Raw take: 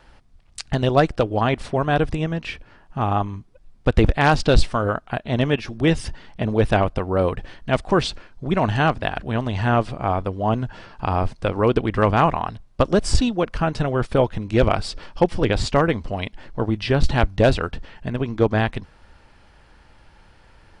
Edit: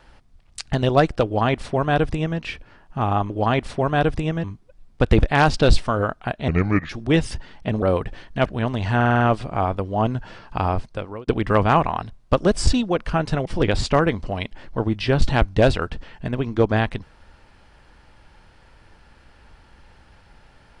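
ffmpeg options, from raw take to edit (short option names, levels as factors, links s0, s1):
-filter_complex "[0:a]asplit=14[s0][s1][s2][s3][s4][s5][s6][s7][s8][s9][s10][s11][s12][s13];[s0]atrim=end=3.302[s14];[s1]atrim=start=1.248:end=2.392[s15];[s2]atrim=start=3.298:end=5.344[s16];[s3]atrim=start=5.34:end=5.63,asetpts=PTS-STARTPTS,asetrate=30870,aresample=44100[s17];[s4]atrim=start=5.626:end=6.562[s18];[s5]atrim=start=7.138:end=7.772[s19];[s6]atrim=start=9.178:end=9.732[s20];[s7]atrim=start=9.678:end=9.732[s21];[s8]atrim=start=9.678:end=9.732[s22];[s9]atrim=start=9.678:end=9.732[s23];[s10]atrim=start=9.678:end=9.732[s24];[s11]atrim=start=9.678:end=11.75,asetpts=PTS-STARTPTS,afade=t=out:st=1.452:d=0.62[s25];[s12]atrim=start=11.75:end=13.932,asetpts=PTS-STARTPTS,afade=t=in:d=0.004:c=hsin[s26];[s13]atrim=start=15.268[s27];[s14][s15]acrossfade=d=0.004:c1=hsin:c2=hsin[s28];[s28][s16]acrossfade=d=0.004:c1=hsin:c2=hsin[s29];[s29][s17]acrossfade=d=0.004:c1=hsin:c2=hsin[s30];[s30][s18]acrossfade=d=0.004:c1=hsin:c2=hsin[s31];[s31][s19]acrossfade=d=0.004:c1=hsin:c2=hsin[s32];[s32][s20]acrossfade=d=0.004:c1=hsin:c2=hsin[s33];[s33][s21]acrossfade=d=0.004:c1=hsin:c2=hsin[s34];[s34][s22]acrossfade=d=0.004:c1=hsin:c2=hsin[s35];[s35][s23]acrossfade=d=0.004:c1=hsin:c2=hsin[s36];[s36][s24]acrossfade=d=0.004:c1=hsin:c2=hsin[s37];[s25][s26]concat=n=2:v=0:a=1[s38];[s37][s38]acrossfade=d=0.004:c1=hsin:c2=hsin[s39];[s39][s27]acrossfade=d=0.004:c1=hsin:c2=hsin"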